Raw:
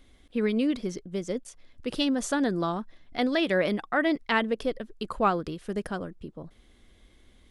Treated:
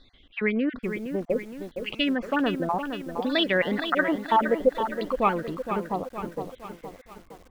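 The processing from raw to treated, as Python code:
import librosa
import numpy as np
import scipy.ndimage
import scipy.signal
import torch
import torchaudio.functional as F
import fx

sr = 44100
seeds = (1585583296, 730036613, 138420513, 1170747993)

y = fx.spec_dropout(x, sr, seeds[0], share_pct=29)
y = fx.filter_lfo_lowpass(y, sr, shape='saw_down', hz=0.62, low_hz=450.0, high_hz=4100.0, q=3.8)
y = fx.echo_crushed(y, sr, ms=465, feedback_pct=55, bits=8, wet_db=-8.0)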